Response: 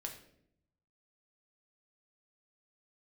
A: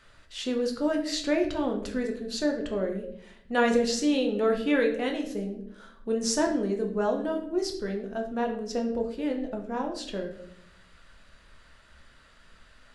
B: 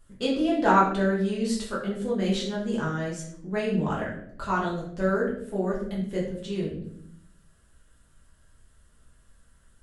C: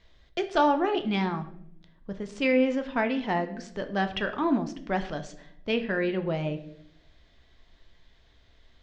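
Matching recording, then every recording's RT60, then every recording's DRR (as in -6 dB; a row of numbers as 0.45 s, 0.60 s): A; 0.70 s, 0.70 s, 0.70 s; 2.0 dB, -6.0 dB, 7.0 dB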